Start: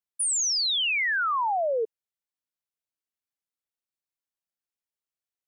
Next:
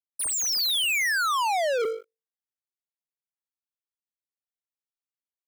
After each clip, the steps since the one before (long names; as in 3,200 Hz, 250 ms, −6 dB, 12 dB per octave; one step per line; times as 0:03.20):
mains-hum notches 50/100/150/200/250/300/350/400/450/500 Hz
leveller curve on the samples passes 5
automatic gain control gain up to 3.5 dB
level −6.5 dB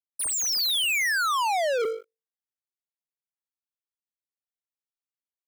no processing that can be heard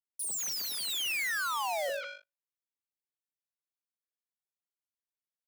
each half-wave held at its own peak
frequency shifter +110 Hz
three-band delay without the direct sound highs, lows, mids 40/190 ms, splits 890/4,500 Hz
level −7.5 dB